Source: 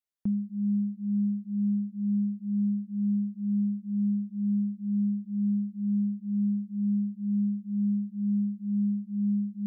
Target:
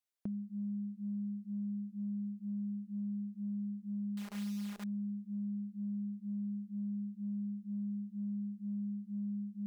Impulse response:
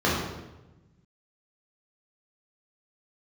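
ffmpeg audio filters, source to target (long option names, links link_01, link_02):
-filter_complex "[0:a]asettb=1/sr,asplit=3[link_01][link_02][link_03];[link_01]atrim=end=4.174[link_04];[link_02]atrim=start=4.17:end=4.84,asetpts=PTS-STARTPTS,afade=type=in:duration=0.004:curve=qsin,afade=type=out:start_time=0.666:duration=0.004:curve=qsin,acrusher=bits=8:dc=4:mix=0:aa=0.000001[link_05];[link_03]atrim=start=4.836[link_06];[link_04][link_05]acrossfade=duration=0.004:curve1=hsin:curve2=qsin[link_07];[link_07][link_06]acrossfade=duration=0.004:curve1=qsin:curve2=hsin,acompressor=threshold=-31dB:ratio=6,lowshelf=frequency=210:gain=-11"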